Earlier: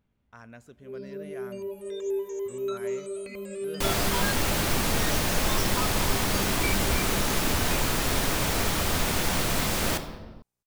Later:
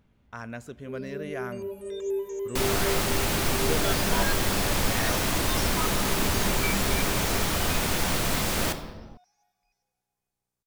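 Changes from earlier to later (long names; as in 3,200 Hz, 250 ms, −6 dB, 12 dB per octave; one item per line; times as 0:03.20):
speech +9.5 dB
second sound: entry −1.25 s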